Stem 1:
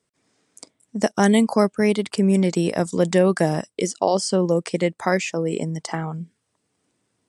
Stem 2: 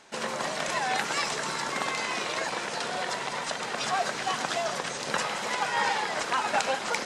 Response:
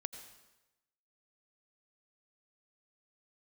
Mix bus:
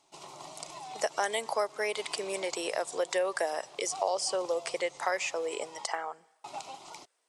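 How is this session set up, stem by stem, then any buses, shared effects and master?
−2.5 dB, 0.00 s, send −16.5 dB, high-pass filter 520 Hz 24 dB per octave
−10.5 dB, 0.00 s, muted 0:05.86–0:06.44, no send, phaser with its sweep stopped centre 330 Hz, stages 8; shaped tremolo saw down 0.51 Hz, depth 55%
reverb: on, RT60 1.0 s, pre-delay 78 ms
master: downward compressor 2 to 1, threshold −30 dBFS, peak gain reduction 7.5 dB

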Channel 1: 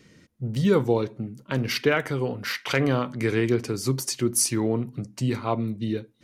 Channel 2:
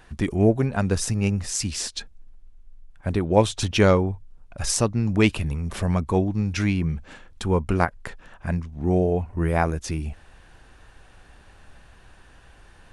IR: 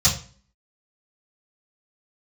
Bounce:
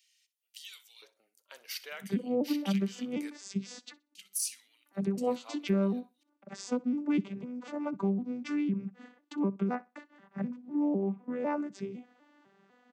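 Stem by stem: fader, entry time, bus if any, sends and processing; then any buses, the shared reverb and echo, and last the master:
−7.0 dB, 0.00 s, muted 0:03.30–0:04.15, no send, echo send −17.5 dB, de-essing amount 35%; first difference; auto-filter high-pass square 0.49 Hz 560–2,800 Hz
−4.0 dB, 1.90 s, no send, echo send −23 dB, vocoder with an arpeggio as carrier major triad, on G3, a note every 251 ms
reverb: not used
echo: repeating echo 62 ms, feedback 18%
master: downward compressor 2.5 to 1, threshold −28 dBFS, peak gain reduction 8.5 dB

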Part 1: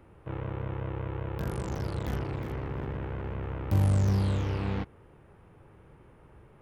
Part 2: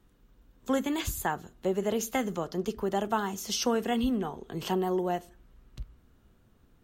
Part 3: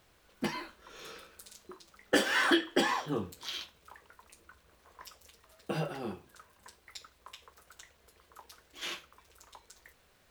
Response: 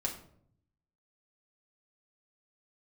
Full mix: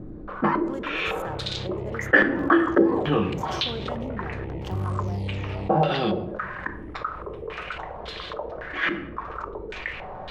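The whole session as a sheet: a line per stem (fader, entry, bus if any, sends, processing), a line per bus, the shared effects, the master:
−17.5 dB, 1.00 s, no send, Chebyshev band-stop filter 930–1,900 Hz, order 4
−13.5 dB, 0.00 s, send −15.5 dB, adaptive Wiener filter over 15 samples; downward compressor 2 to 1, threshold −47 dBFS, peak gain reduction 13 dB
+1.0 dB, 0.00 s, send −9 dB, low-pass on a step sequencer 3.6 Hz 280–3,700 Hz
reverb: on, RT60 0.65 s, pre-delay 5 ms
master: high-shelf EQ 6,900 Hz −10 dB; envelope flattener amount 50%

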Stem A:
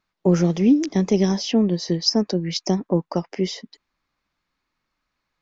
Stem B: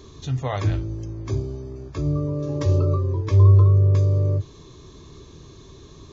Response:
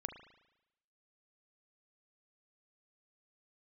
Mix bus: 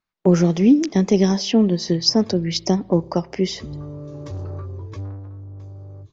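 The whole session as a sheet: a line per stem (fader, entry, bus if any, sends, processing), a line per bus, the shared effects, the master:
+1.0 dB, 0.00 s, send −12.5 dB, noise gate −40 dBFS, range −10 dB
0:03.29 −16.5 dB → 0:03.67 −7 dB → 0:04.99 −7 dB → 0:05.22 −15 dB, 1.65 s, no send, soft clipping −19 dBFS, distortion −8 dB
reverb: on, RT60 0.90 s, pre-delay 36 ms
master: no processing

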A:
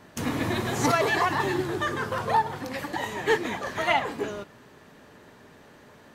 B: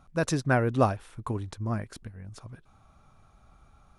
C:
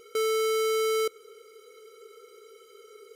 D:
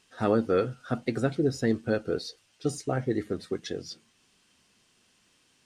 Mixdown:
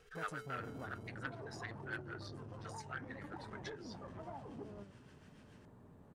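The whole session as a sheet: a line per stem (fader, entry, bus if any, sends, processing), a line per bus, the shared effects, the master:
−8.0 dB, 0.40 s, bus A, no send, treble cut that deepens with the level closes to 890 Hz, closed at −24.5 dBFS; flanger 0.96 Hz, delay 7.8 ms, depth 4.2 ms, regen +89%; bass and treble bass +12 dB, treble −5 dB
−10.0 dB, 0.00 s, bus A, no send, no processing
−13.5 dB, 0.00 s, bus B, no send, automatic ducking −16 dB, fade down 1.45 s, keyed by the fourth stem
+0.5 dB, 0.00 s, bus B, no send, high-pass with resonance 1,500 Hz, resonance Q 3.3; high-shelf EQ 2,700 Hz −8.5 dB
bus A: 0.0 dB, flat-topped bell 3,100 Hz −10.5 dB 2.3 octaves; downward compressor 5 to 1, threshold −44 dBFS, peak gain reduction 16 dB
bus B: 0.0 dB, rotating-speaker cabinet horn 7 Hz; downward compressor 1.5 to 1, threshold −55 dBFS, peak gain reduction 10.5 dB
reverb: not used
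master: saturating transformer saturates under 1,100 Hz

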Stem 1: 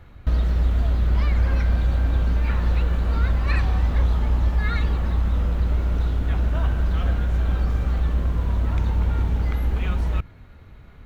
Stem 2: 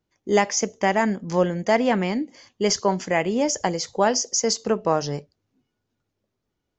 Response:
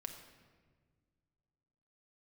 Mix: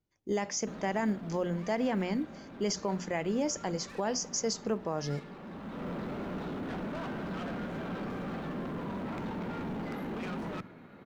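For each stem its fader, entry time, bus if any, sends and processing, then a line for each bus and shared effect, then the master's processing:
0.0 dB, 0.40 s, send −9 dB, high-pass filter 200 Hz 24 dB per octave; high-shelf EQ 3,000 Hz −11.5 dB; soft clipping −38 dBFS, distortion −9 dB; automatic ducking −20 dB, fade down 1.60 s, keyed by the second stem
−9.5 dB, 0.00 s, no send, mains-hum notches 60/120/180/240 Hz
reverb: on, RT60 1.6 s, pre-delay 5 ms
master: low-shelf EQ 240 Hz +7 dB; floating-point word with a short mantissa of 6 bits; brickwall limiter −22 dBFS, peak gain reduction 7 dB

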